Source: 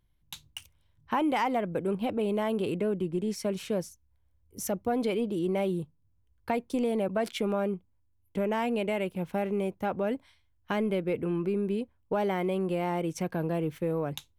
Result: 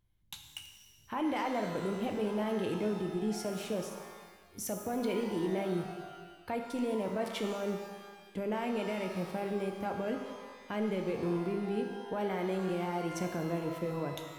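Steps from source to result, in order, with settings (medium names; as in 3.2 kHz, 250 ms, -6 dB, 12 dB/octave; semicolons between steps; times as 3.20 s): peak limiter -24 dBFS, peak gain reduction 6.5 dB; pitch-shifted reverb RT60 1.4 s, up +12 st, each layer -8 dB, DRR 4 dB; trim -3.5 dB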